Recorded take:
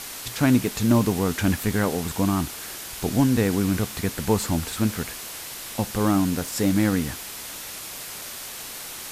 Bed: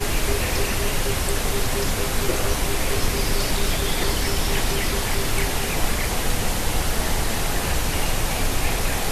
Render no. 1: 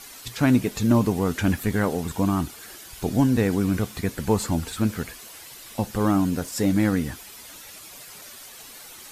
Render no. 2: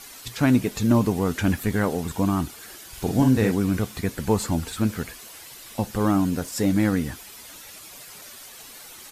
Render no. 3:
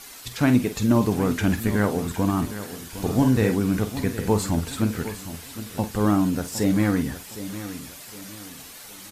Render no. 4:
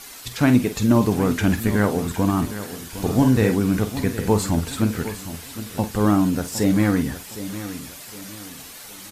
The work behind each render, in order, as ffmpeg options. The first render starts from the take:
-af "afftdn=nr=10:nf=-37"
-filter_complex "[0:a]asplit=3[s0][s1][s2];[s0]afade=t=out:st=2.92:d=0.02[s3];[s1]asplit=2[s4][s5];[s5]adelay=46,volume=0.562[s6];[s4][s6]amix=inputs=2:normalize=0,afade=t=in:st=2.92:d=0.02,afade=t=out:st=3.5:d=0.02[s7];[s2]afade=t=in:st=3.5:d=0.02[s8];[s3][s7][s8]amix=inputs=3:normalize=0"
-filter_complex "[0:a]asplit=2[s0][s1];[s1]adelay=48,volume=0.282[s2];[s0][s2]amix=inputs=2:normalize=0,aecho=1:1:761|1522|2283|3044:0.224|0.0806|0.029|0.0104"
-af "volume=1.33"

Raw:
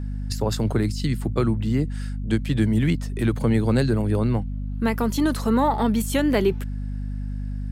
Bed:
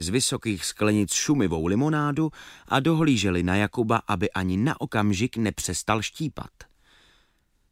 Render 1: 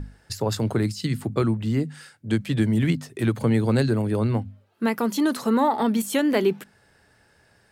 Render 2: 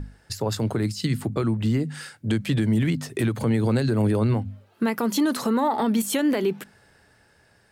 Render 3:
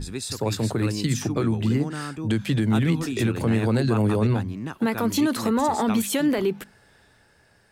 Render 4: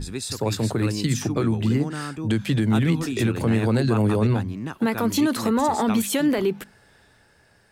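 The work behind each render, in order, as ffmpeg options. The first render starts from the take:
-af "bandreject=f=50:t=h:w=6,bandreject=f=100:t=h:w=6,bandreject=f=150:t=h:w=6,bandreject=f=200:t=h:w=6,bandreject=f=250:t=h:w=6"
-af "dynaudnorm=f=200:g=13:m=2.66,alimiter=limit=0.188:level=0:latency=1:release=178"
-filter_complex "[1:a]volume=0.355[s0];[0:a][s0]amix=inputs=2:normalize=0"
-af "volume=1.12"

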